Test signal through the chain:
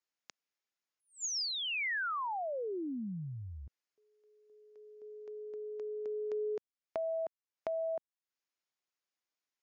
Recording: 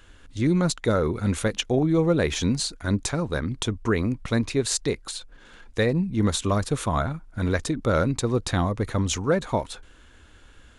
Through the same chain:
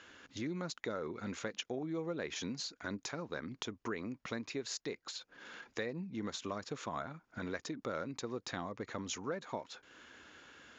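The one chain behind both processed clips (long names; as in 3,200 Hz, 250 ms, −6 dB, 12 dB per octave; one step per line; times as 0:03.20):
high-pass filter 210 Hz 12 dB per octave
downward compressor 2.5 to 1, threshold −42 dBFS
Chebyshev low-pass with heavy ripple 7,000 Hz, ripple 3 dB
level +1 dB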